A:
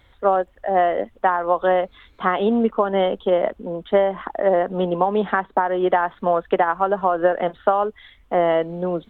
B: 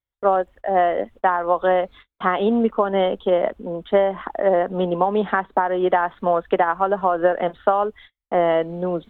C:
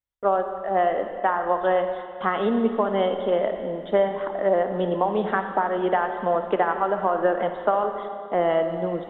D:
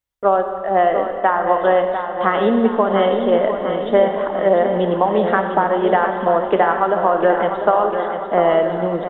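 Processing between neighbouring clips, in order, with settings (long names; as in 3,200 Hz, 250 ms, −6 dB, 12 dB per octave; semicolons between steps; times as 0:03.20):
noise gate −41 dBFS, range −38 dB
convolution reverb RT60 2.3 s, pre-delay 5 ms, DRR 6.5 dB; level −4 dB
repeating echo 699 ms, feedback 54%, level −8.5 dB; level +6 dB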